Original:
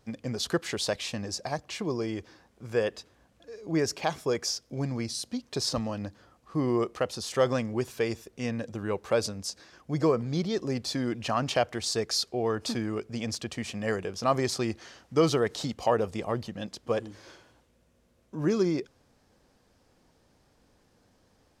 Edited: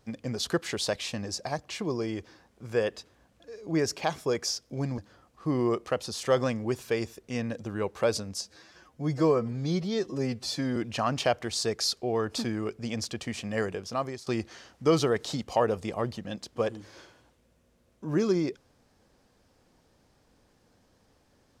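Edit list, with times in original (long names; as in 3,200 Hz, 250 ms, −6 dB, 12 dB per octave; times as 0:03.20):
0:04.98–0:06.07: remove
0:09.50–0:11.07: time-stretch 1.5×
0:14.01–0:14.57: fade out linear, to −20 dB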